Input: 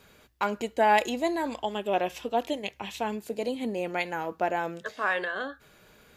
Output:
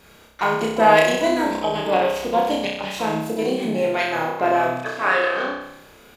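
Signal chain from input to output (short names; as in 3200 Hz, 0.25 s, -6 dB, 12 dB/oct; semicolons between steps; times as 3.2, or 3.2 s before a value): harmoniser -5 st -9 dB, +7 st -13 dB; flutter echo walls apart 5.4 m, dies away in 0.81 s; gain +4.5 dB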